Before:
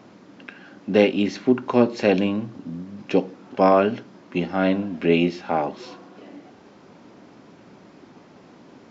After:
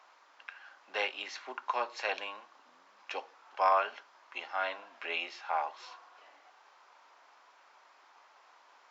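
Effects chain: ladder high-pass 780 Hz, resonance 35%

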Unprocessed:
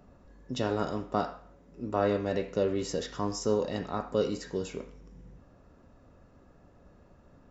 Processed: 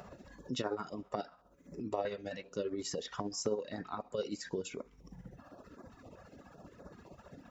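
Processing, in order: HPF 230 Hz 6 dB/oct; compressor 2:1, threshold -57 dBFS, peak gain reduction 18.5 dB; reverb removal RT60 1.8 s; tremolo 15 Hz, depth 50%; stepped notch 7.8 Hz 290–2900 Hz; gain +15 dB

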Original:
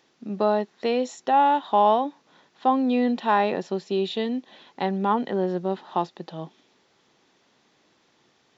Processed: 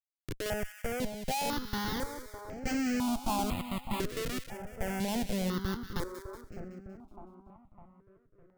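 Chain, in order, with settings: Wiener smoothing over 25 samples; Schmitt trigger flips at -26 dBFS; on a send: split-band echo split 1400 Hz, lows 0.606 s, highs 0.187 s, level -9 dB; on the sum: step phaser 2 Hz 220–3600 Hz; gain -2.5 dB

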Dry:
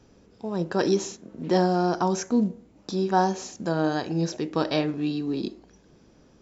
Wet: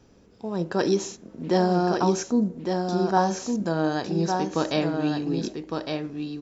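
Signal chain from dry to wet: 2.22–3.13 bell 2800 Hz -13.5 dB -> -6 dB 0.86 oct; echo 1.158 s -5 dB

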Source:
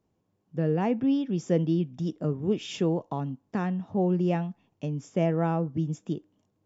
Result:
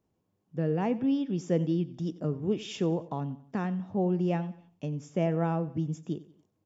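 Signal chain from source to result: feedback echo 92 ms, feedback 41%, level -18 dB; gain -2.5 dB

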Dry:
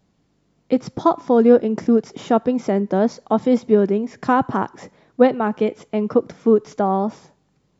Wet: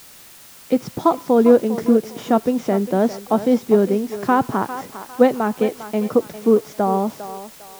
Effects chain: thinning echo 0.402 s, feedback 36%, high-pass 450 Hz, level -11 dB; added noise white -44 dBFS

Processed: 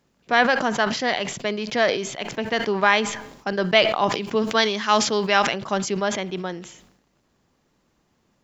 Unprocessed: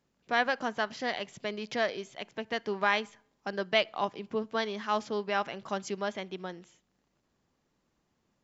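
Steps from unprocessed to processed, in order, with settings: 4.12–5.54 high shelf 2200 Hz +9 dB; sustainer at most 71 dB/s; gain +9 dB

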